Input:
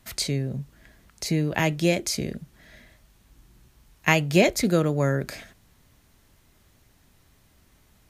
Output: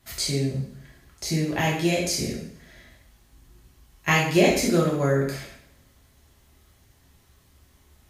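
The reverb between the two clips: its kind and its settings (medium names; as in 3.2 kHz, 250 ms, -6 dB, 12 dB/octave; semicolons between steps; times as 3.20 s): two-slope reverb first 0.62 s, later 1.7 s, from -27 dB, DRR -4.5 dB; trim -5 dB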